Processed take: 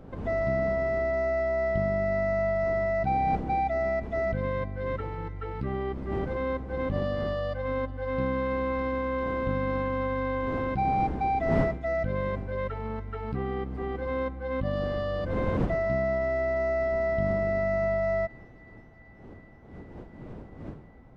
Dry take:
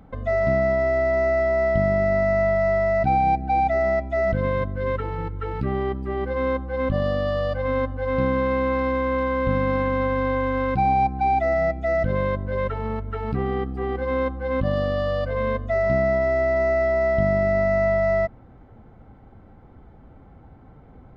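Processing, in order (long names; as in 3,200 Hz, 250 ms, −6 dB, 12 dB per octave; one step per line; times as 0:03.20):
wind on the microphone 320 Hz −33 dBFS
delay with a high-pass on its return 375 ms, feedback 81%, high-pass 1,500 Hz, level −23 dB
level −6.5 dB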